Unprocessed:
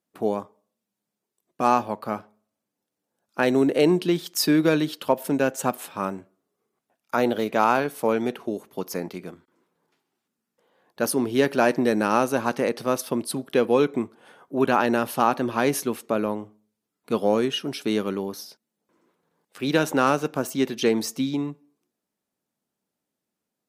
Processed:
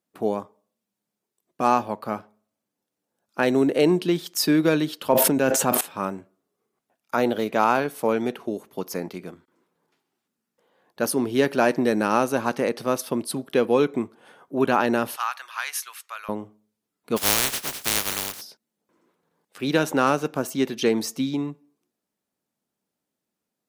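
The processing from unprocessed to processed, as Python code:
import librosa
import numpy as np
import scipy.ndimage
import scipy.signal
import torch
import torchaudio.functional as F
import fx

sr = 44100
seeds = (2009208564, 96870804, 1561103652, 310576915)

y = fx.sustainer(x, sr, db_per_s=20.0, at=(5.02, 5.81))
y = fx.highpass(y, sr, hz=1200.0, slope=24, at=(15.16, 16.29))
y = fx.spec_flatten(y, sr, power=0.13, at=(17.16, 18.4), fade=0.02)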